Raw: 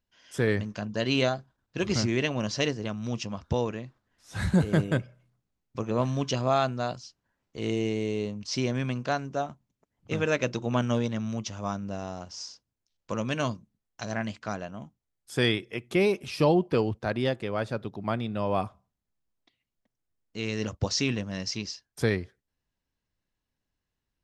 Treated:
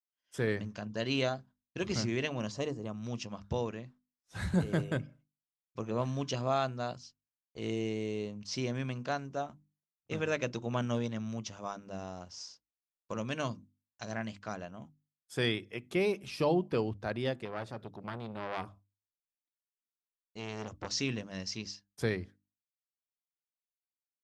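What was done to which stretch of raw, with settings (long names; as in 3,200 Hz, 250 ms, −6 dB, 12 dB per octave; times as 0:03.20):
0:02.51–0:02.94: gain on a spectral selection 1,300–6,400 Hz −9 dB
0:17.45–0:20.90: saturating transformer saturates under 1,400 Hz
whole clip: downward expander −44 dBFS; mains-hum notches 50/100/150/200/250/300 Hz; level −6 dB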